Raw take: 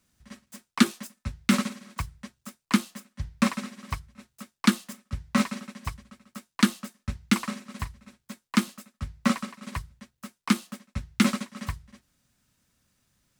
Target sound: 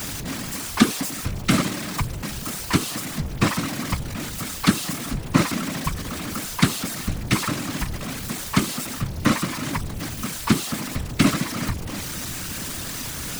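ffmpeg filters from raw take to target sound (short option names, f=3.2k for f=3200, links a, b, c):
-af "aeval=exprs='val(0)+0.5*0.0376*sgn(val(0))':c=same,acontrast=87,afftfilt=real='hypot(re,im)*cos(2*PI*random(0))':imag='hypot(re,im)*sin(2*PI*random(1))':win_size=512:overlap=0.75,volume=2.5dB"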